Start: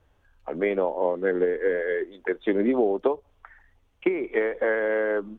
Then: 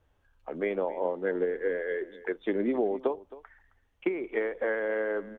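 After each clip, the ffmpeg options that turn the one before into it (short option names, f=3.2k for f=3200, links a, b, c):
-af "aecho=1:1:266:0.126,volume=-5.5dB"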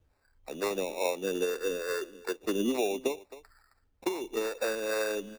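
-filter_complex "[0:a]acrossover=split=420[a][b];[a]aeval=exprs='val(0)*(1-0.7/2+0.7/2*cos(2*PI*2.3*n/s))':c=same[c];[b]aeval=exprs='val(0)*(1-0.7/2-0.7/2*cos(2*PI*2.3*n/s))':c=same[d];[c][d]amix=inputs=2:normalize=0,acrusher=samples=14:mix=1:aa=0.000001,volume=2dB"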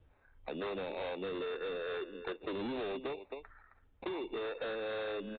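-af "aresample=8000,asoftclip=type=hard:threshold=-33.5dB,aresample=44100,acompressor=threshold=-41dB:ratio=6,volume=4dB"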